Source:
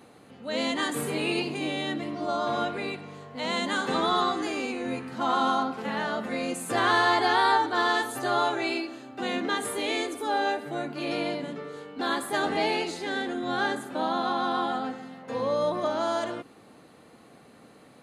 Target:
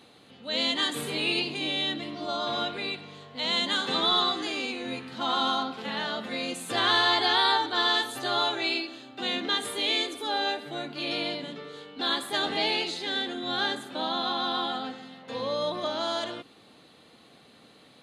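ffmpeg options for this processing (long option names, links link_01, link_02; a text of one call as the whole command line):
ffmpeg -i in.wav -af "equalizer=frequency=3600:width_type=o:width=0.95:gain=13.5,volume=-4dB" out.wav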